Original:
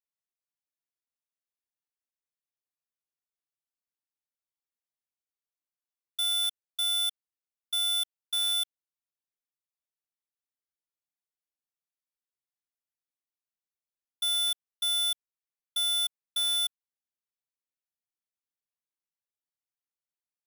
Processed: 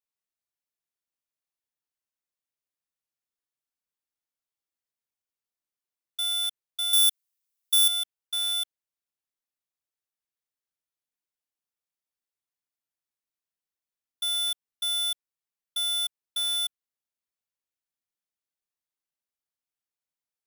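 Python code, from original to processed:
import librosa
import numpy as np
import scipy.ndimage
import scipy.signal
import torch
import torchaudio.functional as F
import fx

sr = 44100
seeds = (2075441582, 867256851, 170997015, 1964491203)

y = fx.tilt_eq(x, sr, slope=3.5, at=(6.93, 7.88))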